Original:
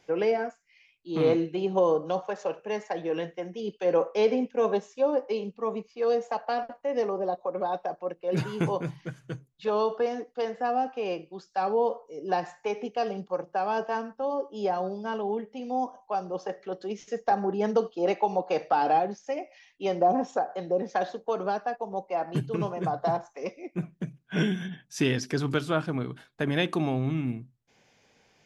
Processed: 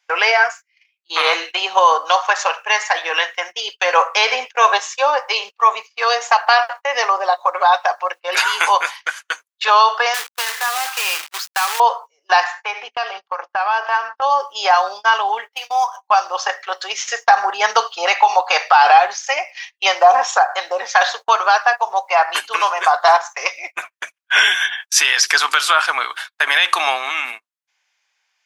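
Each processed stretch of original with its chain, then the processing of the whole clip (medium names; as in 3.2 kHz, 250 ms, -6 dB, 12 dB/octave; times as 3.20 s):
10.14–11.80 s: peaking EQ 640 Hz -11 dB 0.67 oct + compression 12:1, threshold -34 dBFS + companded quantiser 4-bit
12.44–14.22 s: distance through air 160 m + hum notches 60/120/180/240/300 Hz + compression 5:1, threshold -32 dBFS
15.52–15.97 s: median filter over 5 samples + high-pass 820 Hz 6 dB/octave
whole clip: high-pass 1 kHz 24 dB/octave; gate -55 dBFS, range -28 dB; loudness maximiser +26.5 dB; trim -1 dB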